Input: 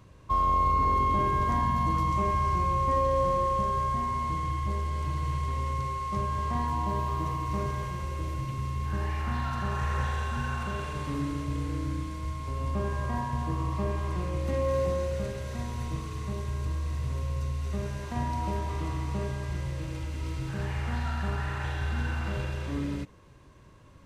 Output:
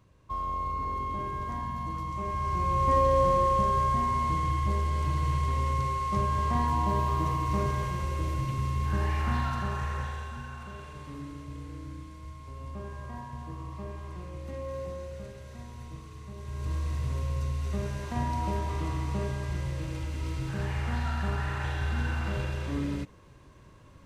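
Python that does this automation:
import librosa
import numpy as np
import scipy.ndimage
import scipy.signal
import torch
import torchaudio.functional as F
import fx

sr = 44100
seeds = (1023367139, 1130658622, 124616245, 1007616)

y = fx.gain(x, sr, db=fx.line((2.13, -8.0), (2.92, 2.5), (9.35, 2.5), (10.49, -9.5), (16.34, -9.5), (16.74, 0.5)))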